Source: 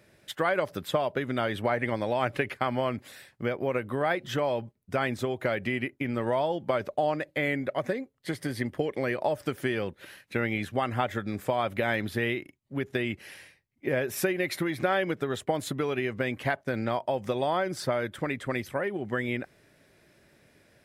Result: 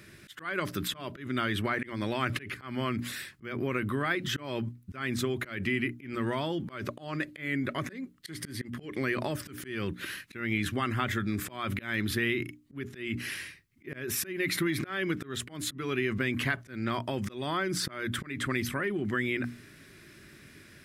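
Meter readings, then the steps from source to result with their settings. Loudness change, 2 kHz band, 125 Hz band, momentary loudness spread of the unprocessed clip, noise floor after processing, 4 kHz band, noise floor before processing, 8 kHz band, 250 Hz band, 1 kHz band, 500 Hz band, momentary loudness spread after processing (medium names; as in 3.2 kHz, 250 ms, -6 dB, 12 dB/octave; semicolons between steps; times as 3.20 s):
-2.5 dB, -0.5 dB, 0.0 dB, 7 LU, -54 dBFS, +2.5 dB, -67 dBFS, +5.0 dB, -0.5 dB, -6.0 dB, -7.5 dB, 11 LU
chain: high-order bell 650 Hz -12.5 dB 1.2 oct; hum notches 60/120/180/240/300 Hz; in parallel at -1 dB: compressor with a negative ratio -41 dBFS, ratio -1; on the sum: slow attack 205 ms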